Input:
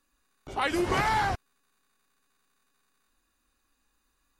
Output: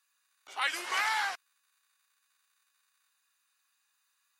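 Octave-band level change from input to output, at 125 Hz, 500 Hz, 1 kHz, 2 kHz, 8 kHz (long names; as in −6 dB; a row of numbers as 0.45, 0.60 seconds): below −40 dB, −17.5 dB, −6.5 dB, 0.0 dB, +1.5 dB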